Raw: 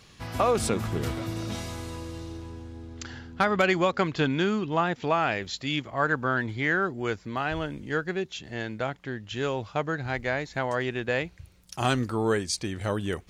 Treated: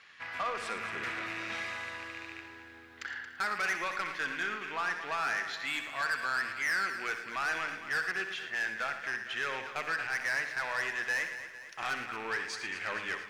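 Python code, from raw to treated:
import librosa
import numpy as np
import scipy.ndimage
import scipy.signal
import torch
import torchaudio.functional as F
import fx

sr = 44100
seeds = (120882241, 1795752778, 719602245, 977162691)

y = fx.rattle_buzz(x, sr, strikes_db=-34.0, level_db=-31.0)
y = fx.rider(y, sr, range_db=3, speed_s=0.5)
y = fx.bandpass_q(y, sr, hz=1800.0, q=2.6)
y = 10.0 ** (-33.5 / 20.0) * np.tanh(y / 10.0 ** (-33.5 / 20.0))
y = fx.echo_multitap(y, sr, ms=(63, 86, 112), db=(-11.0, -16.5, -11.5))
y = fx.echo_crushed(y, sr, ms=227, feedback_pct=55, bits=12, wet_db=-11.5)
y = y * 10.0 ** (6.0 / 20.0)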